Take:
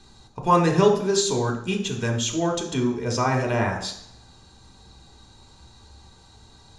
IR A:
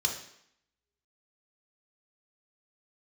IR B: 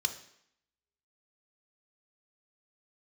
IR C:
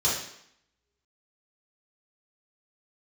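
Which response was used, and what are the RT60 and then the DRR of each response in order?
A; 0.70, 0.70, 0.70 s; 2.0, 8.0, -7.5 dB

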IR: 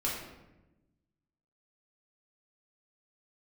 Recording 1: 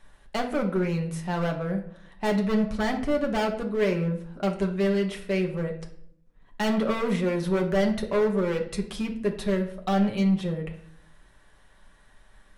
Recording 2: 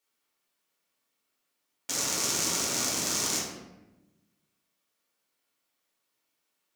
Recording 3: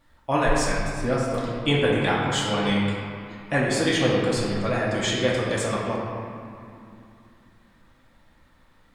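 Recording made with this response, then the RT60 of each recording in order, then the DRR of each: 2; 0.60, 1.0, 2.6 s; 1.0, -6.0, -6.0 dB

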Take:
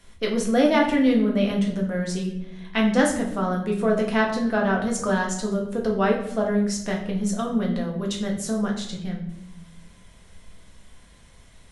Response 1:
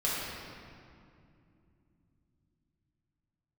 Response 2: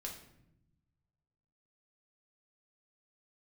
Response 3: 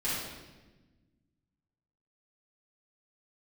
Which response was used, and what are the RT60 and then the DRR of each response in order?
2; 2.5, 0.80, 1.2 s; -8.5, -1.0, -9.5 dB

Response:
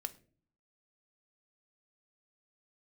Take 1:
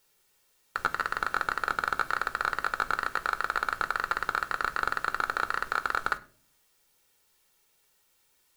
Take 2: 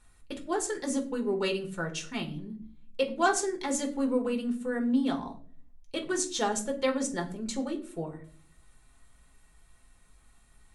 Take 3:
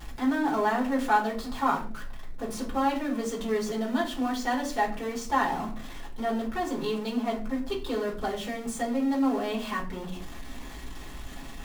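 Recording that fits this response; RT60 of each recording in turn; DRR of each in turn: 1; 0.45, 0.45, 0.45 s; 9.0, 2.5, -3.5 dB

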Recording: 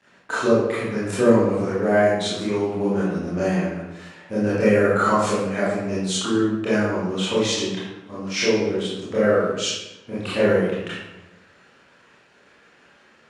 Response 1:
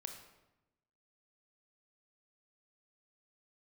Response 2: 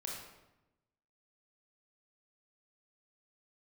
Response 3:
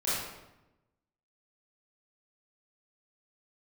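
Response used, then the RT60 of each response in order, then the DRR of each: 3; 0.95, 0.95, 0.95 s; 4.5, -2.5, -11.5 dB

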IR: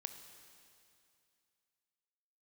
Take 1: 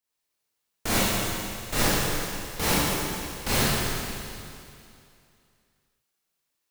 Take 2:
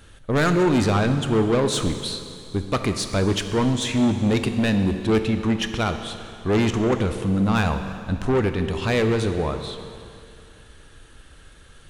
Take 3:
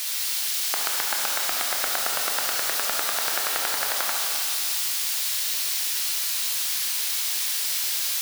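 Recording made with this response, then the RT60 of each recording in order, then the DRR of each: 2; 2.5, 2.5, 2.5 s; -10.0, 7.5, -1.5 dB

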